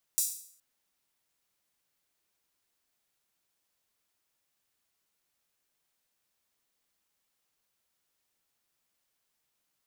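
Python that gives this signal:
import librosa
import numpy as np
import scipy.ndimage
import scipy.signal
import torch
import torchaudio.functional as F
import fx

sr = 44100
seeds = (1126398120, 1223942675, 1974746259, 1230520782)

y = fx.drum_hat_open(sr, length_s=0.42, from_hz=7000.0, decay_s=0.57)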